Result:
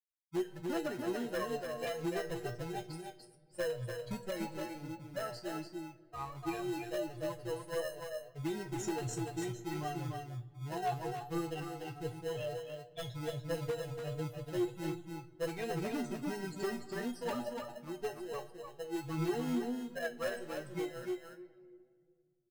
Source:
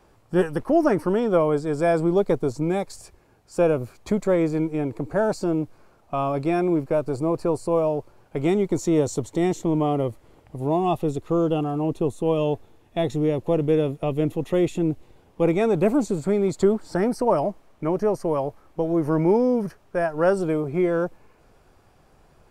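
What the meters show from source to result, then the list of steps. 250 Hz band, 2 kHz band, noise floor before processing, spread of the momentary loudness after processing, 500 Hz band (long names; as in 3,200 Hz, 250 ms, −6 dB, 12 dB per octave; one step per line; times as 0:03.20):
−16.5 dB, −9.0 dB, −58 dBFS, 8 LU, −17.0 dB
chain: spectral dynamics exaggerated over time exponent 3
tube saturation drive 22 dB, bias 0.35
in parallel at −4 dB: decimation without filtering 38×
on the sum: low-shelf EQ 190 Hz −8.5 dB
tuned comb filter 120 Hz, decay 0.22 s, harmonics all, mix 80%
rectangular room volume 3,300 cubic metres, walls mixed, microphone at 0.36 metres
downward compressor 6 to 1, threshold −37 dBFS, peak gain reduction 9.5 dB
wave folding −33 dBFS
single-tap delay 292 ms −5 dB
flanger 1.4 Hz, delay 5.5 ms, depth 3.1 ms, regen +53%
level +8 dB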